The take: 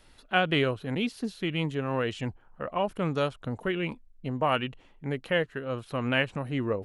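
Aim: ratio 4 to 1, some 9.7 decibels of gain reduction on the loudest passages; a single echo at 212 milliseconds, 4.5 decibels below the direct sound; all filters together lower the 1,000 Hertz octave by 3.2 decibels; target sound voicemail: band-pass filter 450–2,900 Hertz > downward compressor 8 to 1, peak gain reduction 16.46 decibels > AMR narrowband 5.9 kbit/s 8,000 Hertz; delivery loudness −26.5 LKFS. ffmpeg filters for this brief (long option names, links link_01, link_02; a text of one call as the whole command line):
ffmpeg -i in.wav -af "equalizer=frequency=1000:width_type=o:gain=-4,acompressor=threshold=-33dB:ratio=4,highpass=450,lowpass=2900,aecho=1:1:212:0.596,acompressor=threshold=-47dB:ratio=8,volume=26.5dB" -ar 8000 -c:a libopencore_amrnb -b:a 5900 out.amr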